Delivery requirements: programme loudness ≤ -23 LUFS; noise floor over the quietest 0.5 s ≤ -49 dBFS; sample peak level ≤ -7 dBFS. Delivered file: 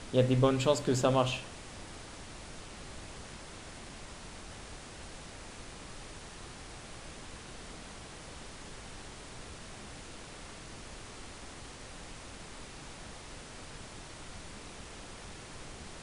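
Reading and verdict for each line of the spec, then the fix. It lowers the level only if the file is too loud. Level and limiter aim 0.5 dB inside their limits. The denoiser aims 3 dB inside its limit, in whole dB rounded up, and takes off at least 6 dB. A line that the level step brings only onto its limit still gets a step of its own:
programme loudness -38.5 LUFS: OK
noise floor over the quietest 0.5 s -47 dBFS: fail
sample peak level -12.0 dBFS: OK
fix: denoiser 6 dB, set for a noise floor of -47 dBFS

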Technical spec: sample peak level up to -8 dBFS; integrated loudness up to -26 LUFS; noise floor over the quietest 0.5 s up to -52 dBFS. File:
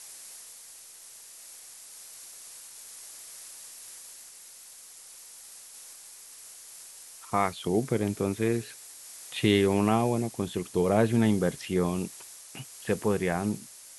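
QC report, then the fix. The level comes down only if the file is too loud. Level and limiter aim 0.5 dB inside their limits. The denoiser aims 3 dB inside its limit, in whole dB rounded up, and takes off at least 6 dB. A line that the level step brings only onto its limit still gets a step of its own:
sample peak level -9.0 dBFS: OK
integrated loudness -27.5 LUFS: OK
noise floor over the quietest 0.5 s -49 dBFS: fail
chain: denoiser 6 dB, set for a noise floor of -49 dBFS

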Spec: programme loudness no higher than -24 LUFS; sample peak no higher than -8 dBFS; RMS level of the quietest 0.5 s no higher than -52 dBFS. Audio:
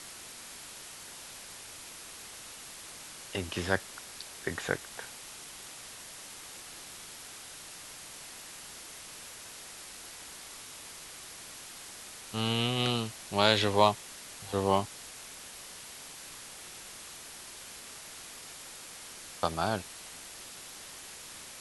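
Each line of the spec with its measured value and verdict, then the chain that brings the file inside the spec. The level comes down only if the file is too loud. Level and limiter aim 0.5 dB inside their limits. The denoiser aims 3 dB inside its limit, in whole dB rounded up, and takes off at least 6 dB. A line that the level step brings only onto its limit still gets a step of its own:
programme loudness -36.0 LUFS: OK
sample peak -7.0 dBFS: fail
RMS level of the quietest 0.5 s -47 dBFS: fail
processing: denoiser 8 dB, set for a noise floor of -47 dBFS; limiter -8.5 dBFS

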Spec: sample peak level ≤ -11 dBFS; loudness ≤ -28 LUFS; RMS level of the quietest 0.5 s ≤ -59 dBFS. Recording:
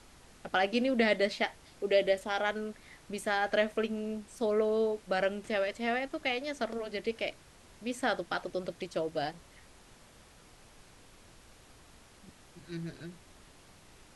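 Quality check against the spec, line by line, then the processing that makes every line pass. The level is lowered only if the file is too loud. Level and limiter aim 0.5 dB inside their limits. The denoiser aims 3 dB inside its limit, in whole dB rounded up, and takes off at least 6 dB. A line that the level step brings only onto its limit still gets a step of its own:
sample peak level -14.0 dBFS: OK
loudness -32.5 LUFS: OK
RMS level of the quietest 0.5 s -57 dBFS: fail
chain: denoiser 6 dB, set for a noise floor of -57 dBFS

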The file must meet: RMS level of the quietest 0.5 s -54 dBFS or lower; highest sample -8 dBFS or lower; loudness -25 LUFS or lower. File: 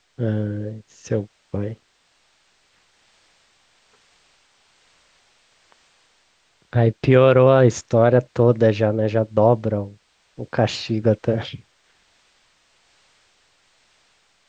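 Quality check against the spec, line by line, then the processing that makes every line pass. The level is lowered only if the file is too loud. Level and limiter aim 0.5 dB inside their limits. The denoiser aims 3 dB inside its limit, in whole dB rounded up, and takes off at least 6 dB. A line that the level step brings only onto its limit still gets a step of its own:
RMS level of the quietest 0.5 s -63 dBFS: OK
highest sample -2.5 dBFS: fail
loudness -19.0 LUFS: fail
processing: gain -6.5 dB

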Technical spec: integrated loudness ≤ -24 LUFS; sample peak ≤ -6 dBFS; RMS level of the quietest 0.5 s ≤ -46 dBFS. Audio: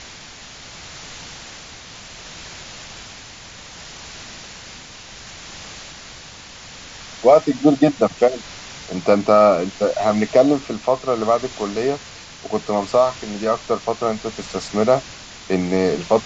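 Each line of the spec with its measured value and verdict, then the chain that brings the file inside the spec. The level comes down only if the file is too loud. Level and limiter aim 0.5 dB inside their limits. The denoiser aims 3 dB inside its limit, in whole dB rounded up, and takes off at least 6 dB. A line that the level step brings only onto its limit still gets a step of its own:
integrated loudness -19.0 LUFS: fail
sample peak -2.0 dBFS: fail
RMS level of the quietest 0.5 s -39 dBFS: fail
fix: denoiser 6 dB, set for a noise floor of -39 dBFS; gain -5.5 dB

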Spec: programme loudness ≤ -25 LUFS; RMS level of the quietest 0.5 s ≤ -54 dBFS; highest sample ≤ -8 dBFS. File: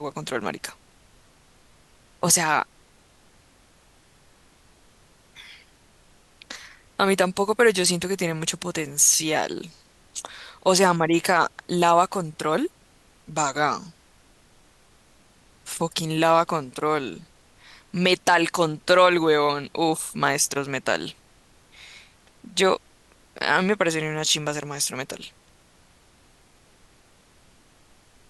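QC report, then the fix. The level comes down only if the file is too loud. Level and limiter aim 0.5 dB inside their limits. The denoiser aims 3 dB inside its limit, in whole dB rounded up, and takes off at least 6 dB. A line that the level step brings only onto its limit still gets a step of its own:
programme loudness -22.5 LUFS: fail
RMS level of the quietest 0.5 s -57 dBFS: OK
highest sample -6.0 dBFS: fail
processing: gain -3 dB

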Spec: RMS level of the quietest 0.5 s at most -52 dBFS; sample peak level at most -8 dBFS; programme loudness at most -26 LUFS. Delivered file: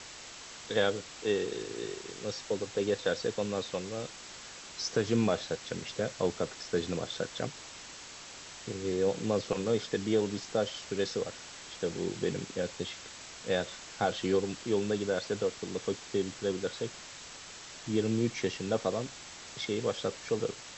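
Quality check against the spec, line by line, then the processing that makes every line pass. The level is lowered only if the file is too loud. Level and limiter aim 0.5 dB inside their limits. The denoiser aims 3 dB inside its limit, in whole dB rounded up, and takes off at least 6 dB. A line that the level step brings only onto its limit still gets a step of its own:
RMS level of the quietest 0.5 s -47 dBFS: fail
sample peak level -14.5 dBFS: OK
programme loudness -33.5 LUFS: OK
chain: denoiser 8 dB, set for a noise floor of -47 dBFS

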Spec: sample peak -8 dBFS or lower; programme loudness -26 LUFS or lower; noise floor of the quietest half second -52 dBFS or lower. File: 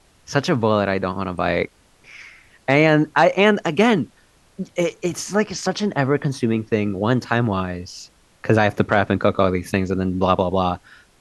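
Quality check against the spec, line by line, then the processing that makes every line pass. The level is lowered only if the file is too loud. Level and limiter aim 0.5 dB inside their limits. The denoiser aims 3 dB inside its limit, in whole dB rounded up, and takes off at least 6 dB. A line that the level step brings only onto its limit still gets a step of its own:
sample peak -2.5 dBFS: fail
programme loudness -20.0 LUFS: fail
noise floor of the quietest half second -55 dBFS: OK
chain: gain -6.5 dB

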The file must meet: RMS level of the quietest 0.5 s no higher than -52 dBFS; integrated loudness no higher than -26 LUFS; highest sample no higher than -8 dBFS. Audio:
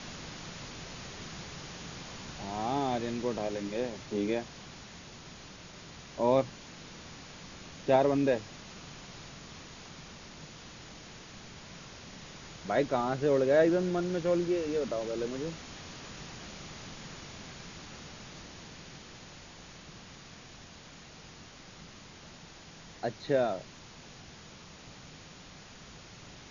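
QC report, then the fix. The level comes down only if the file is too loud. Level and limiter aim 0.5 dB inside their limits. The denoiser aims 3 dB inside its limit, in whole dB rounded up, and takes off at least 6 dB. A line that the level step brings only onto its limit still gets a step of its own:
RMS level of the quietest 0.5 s -51 dBFS: fail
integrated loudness -32.0 LUFS: OK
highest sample -13.0 dBFS: OK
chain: denoiser 6 dB, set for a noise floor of -51 dBFS

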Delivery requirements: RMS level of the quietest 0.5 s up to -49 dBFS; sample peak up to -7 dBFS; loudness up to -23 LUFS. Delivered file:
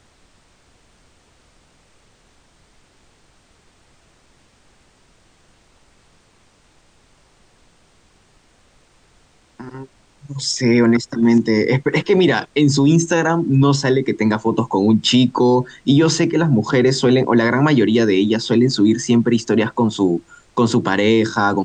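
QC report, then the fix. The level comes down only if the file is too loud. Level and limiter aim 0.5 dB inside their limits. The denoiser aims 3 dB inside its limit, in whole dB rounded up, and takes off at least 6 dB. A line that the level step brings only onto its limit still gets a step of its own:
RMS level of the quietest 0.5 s -55 dBFS: OK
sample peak -5.5 dBFS: fail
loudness -16.0 LUFS: fail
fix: gain -7.5 dB

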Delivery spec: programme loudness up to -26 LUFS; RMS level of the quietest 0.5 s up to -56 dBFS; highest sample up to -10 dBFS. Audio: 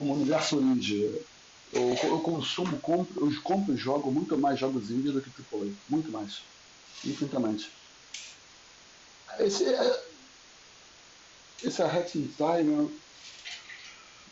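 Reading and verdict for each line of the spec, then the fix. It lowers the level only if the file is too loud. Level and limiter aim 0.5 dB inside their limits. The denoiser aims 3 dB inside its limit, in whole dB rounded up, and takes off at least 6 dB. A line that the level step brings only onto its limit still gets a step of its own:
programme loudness -29.5 LUFS: OK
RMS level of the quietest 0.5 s -54 dBFS: fail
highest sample -14.5 dBFS: OK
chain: denoiser 6 dB, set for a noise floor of -54 dBFS

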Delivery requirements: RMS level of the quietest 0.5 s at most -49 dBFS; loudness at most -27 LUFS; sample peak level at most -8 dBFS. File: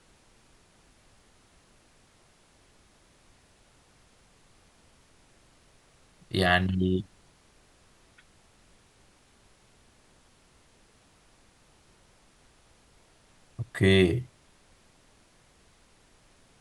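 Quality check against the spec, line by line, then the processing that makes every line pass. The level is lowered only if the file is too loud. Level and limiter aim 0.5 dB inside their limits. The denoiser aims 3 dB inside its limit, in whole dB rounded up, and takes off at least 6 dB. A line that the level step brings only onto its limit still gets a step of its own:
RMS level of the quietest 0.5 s -61 dBFS: OK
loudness -25.5 LUFS: fail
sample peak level -7.5 dBFS: fail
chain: gain -2 dB

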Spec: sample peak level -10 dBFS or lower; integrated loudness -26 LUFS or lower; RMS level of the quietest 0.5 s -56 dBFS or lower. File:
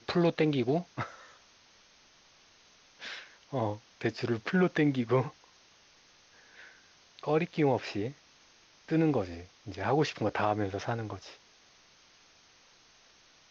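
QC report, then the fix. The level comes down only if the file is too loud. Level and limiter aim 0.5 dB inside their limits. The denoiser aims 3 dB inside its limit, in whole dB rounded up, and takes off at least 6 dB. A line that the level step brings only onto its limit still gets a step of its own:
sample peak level -15.0 dBFS: OK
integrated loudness -31.0 LUFS: OK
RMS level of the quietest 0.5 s -61 dBFS: OK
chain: none

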